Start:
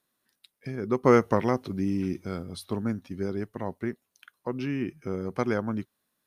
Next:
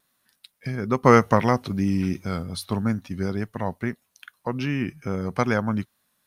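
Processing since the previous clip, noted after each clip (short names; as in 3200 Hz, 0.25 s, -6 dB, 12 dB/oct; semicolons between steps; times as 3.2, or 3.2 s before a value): bell 360 Hz -8.5 dB 1 oct; vibrato 2.4 Hz 35 cents; gain +8 dB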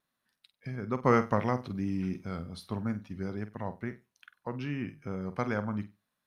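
high shelf 5200 Hz -10.5 dB; flutter echo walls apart 8.2 m, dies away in 0.24 s; gain -9 dB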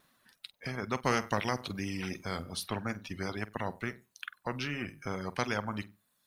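reverb removal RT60 0.84 s; spectral compressor 2:1; gain -1 dB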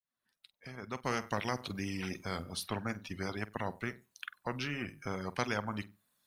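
opening faded in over 1.75 s; gain -1.5 dB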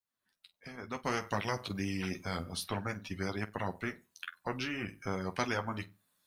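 flange 0.61 Hz, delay 9.8 ms, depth 2.5 ms, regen -30%; gain +4.5 dB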